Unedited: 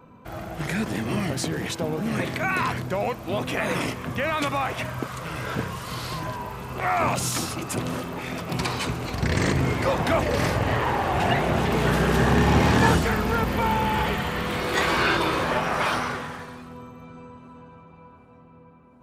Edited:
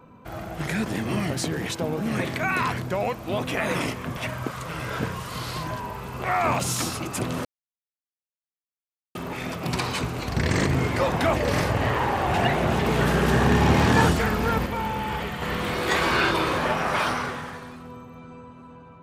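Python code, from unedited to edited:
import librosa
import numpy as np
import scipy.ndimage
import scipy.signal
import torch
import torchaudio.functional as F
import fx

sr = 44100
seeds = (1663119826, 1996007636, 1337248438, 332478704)

y = fx.edit(x, sr, fx.cut(start_s=4.17, length_s=0.56),
    fx.insert_silence(at_s=8.01, length_s=1.7),
    fx.clip_gain(start_s=13.52, length_s=0.76, db=-5.0), tone=tone)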